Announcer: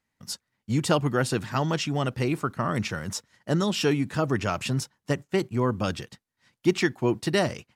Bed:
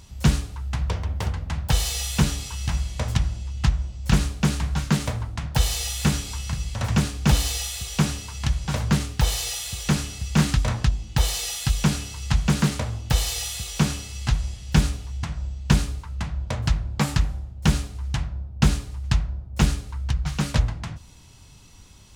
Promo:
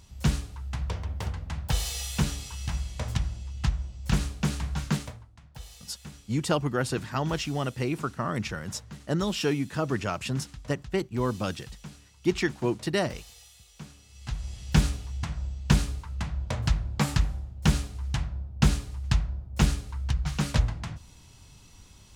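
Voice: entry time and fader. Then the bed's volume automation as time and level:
5.60 s, -3.0 dB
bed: 4.95 s -6 dB
5.28 s -23 dB
13.93 s -23 dB
14.60 s -3 dB

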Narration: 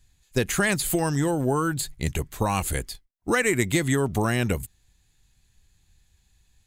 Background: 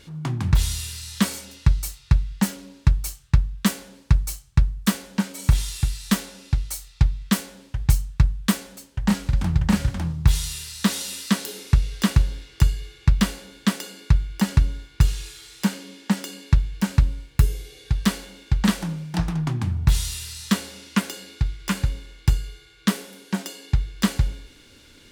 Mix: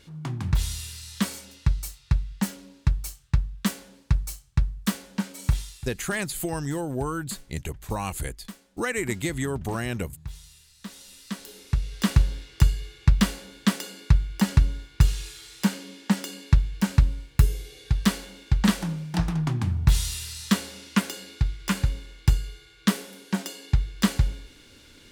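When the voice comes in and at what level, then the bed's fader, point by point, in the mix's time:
5.50 s, -5.5 dB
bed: 5.49 s -5 dB
5.99 s -20.5 dB
10.76 s -20.5 dB
12.20 s -1 dB

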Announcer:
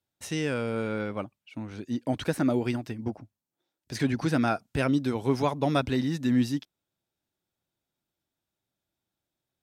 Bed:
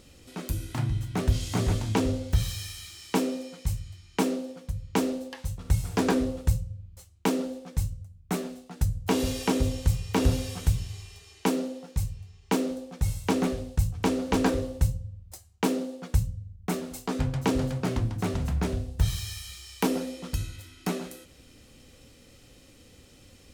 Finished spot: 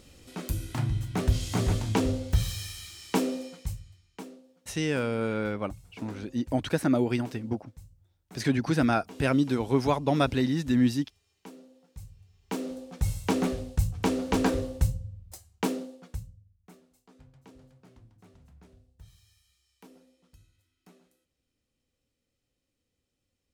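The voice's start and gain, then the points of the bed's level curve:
4.45 s, +1.0 dB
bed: 3.46 s -0.5 dB
4.43 s -21.5 dB
11.67 s -21.5 dB
12.95 s -1 dB
15.57 s -1 dB
16.90 s -28 dB

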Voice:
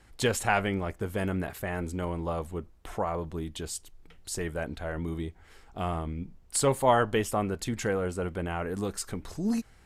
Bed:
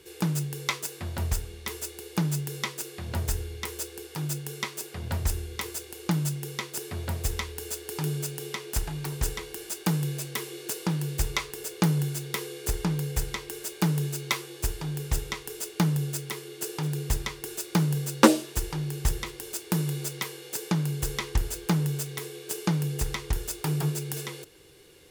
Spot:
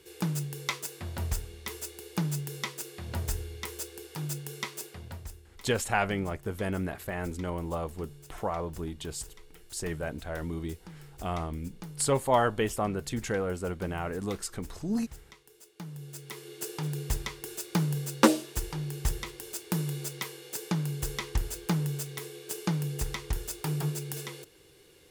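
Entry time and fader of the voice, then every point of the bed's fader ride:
5.45 s, -1.5 dB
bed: 4.84 s -3.5 dB
5.42 s -20 dB
15.76 s -20 dB
16.49 s -3.5 dB

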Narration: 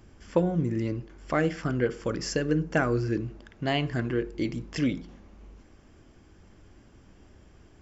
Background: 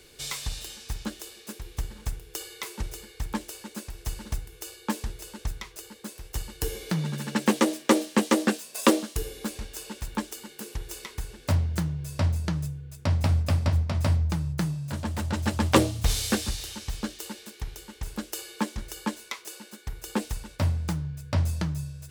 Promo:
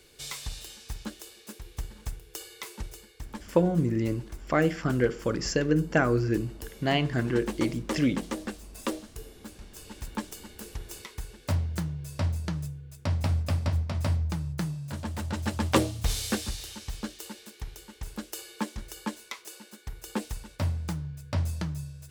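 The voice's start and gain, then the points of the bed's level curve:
3.20 s, +1.5 dB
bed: 2.74 s -4 dB
3.62 s -12 dB
9.56 s -12 dB
10.06 s -3.5 dB

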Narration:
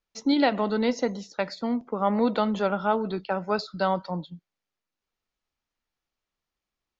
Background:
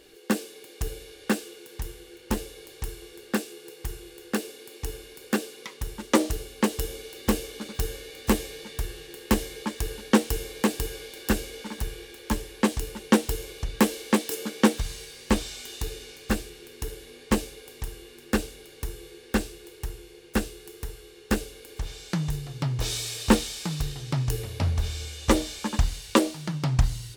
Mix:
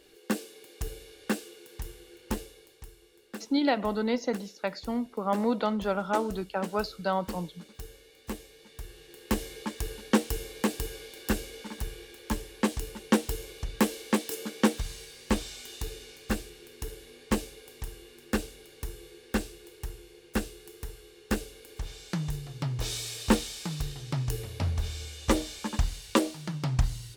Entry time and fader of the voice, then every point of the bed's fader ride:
3.25 s, -3.5 dB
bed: 2.32 s -4.5 dB
2.89 s -14.5 dB
8.54 s -14.5 dB
9.48 s -4 dB

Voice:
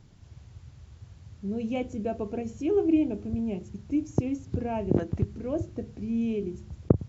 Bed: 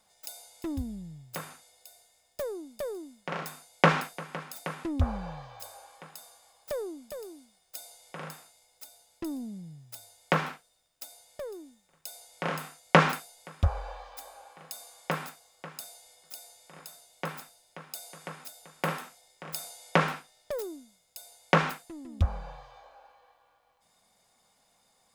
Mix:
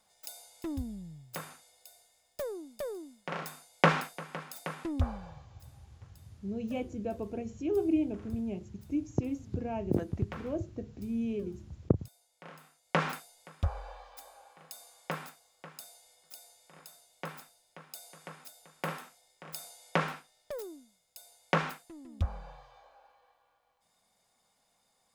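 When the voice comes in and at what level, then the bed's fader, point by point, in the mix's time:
5.00 s, -5.0 dB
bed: 4.99 s -2.5 dB
5.61 s -18 dB
12.56 s -18 dB
13.17 s -5.5 dB

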